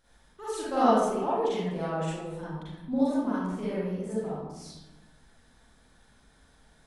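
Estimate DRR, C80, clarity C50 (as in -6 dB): -10.5 dB, 0.5 dB, -5.0 dB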